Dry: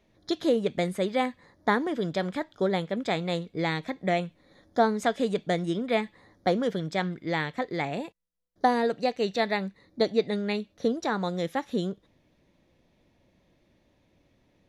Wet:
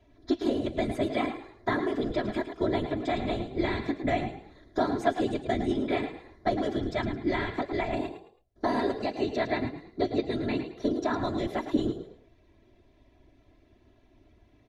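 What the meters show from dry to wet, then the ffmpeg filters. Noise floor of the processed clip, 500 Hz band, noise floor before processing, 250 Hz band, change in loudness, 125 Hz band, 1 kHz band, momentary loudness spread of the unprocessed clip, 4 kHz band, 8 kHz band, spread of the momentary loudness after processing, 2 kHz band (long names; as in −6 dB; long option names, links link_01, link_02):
−62 dBFS, −2.5 dB, −67 dBFS, +0.5 dB, −1.5 dB, −2.0 dB, −3.0 dB, 7 LU, −4.0 dB, can't be measured, 5 LU, −3.0 dB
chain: -filter_complex "[0:a]lowshelf=frequency=100:gain=9,bandreject=frequency=278.5:width_type=h:width=4,bandreject=frequency=557:width_type=h:width=4,acrossover=split=160|3000[link_01][link_02][link_03];[link_02]acompressor=threshold=-31dB:ratio=2[link_04];[link_01][link_04][link_03]amix=inputs=3:normalize=0,acrossover=split=2700[link_05][link_06];[link_06]alimiter=level_in=10.5dB:limit=-24dB:level=0:latency=1:release=75,volume=-10.5dB[link_07];[link_05][link_07]amix=inputs=2:normalize=0,afftfilt=real='hypot(re,im)*cos(2*PI*random(0))':imag='hypot(re,im)*sin(2*PI*random(1))':win_size=512:overlap=0.75,acontrast=51,aemphasis=mode=reproduction:type=cd,aecho=1:1:3:0.81,asplit=4[link_08][link_09][link_10][link_11];[link_09]adelay=108,afreqshift=38,volume=-10dB[link_12];[link_10]adelay=216,afreqshift=76,volume=-20.5dB[link_13];[link_11]adelay=324,afreqshift=114,volume=-30.9dB[link_14];[link_08][link_12][link_13][link_14]amix=inputs=4:normalize=0"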